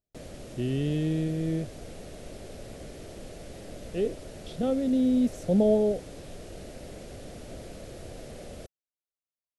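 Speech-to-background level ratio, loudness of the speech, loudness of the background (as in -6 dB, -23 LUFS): 17.0 dB, -27.0 LUFS, -44.0 LUFS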